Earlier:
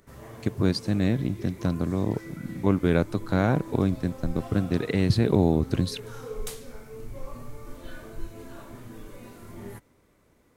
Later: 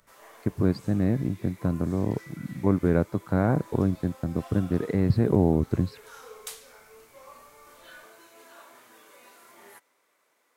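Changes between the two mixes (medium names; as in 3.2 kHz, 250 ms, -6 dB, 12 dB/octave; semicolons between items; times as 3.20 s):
speech: add boxcar filter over 14 samples; background: add high-pass 770 Hz 12 dB/octave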